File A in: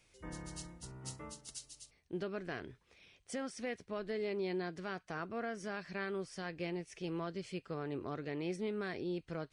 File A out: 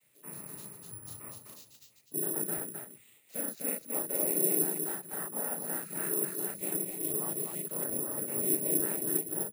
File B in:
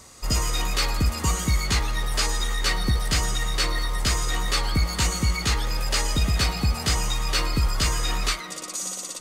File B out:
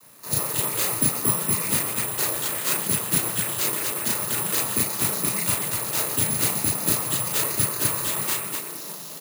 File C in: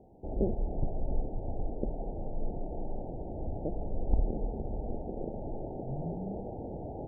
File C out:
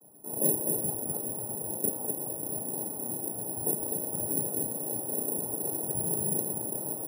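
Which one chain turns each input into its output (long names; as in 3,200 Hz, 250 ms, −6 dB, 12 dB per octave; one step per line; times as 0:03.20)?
dynamic equaliser 380 Hz, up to +5 dB, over −45 dBFS, Q 1.2
cochlear-implant simulation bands 12
high-frequency loss of the air 79 metres
on a send: loudspeakers that aren't time-aligned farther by 12 metres −1 dB, 87 metres −3 dB
on the sum: bad sample-rate conversion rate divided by 4×, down filtered, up zero stuff
level −5 dB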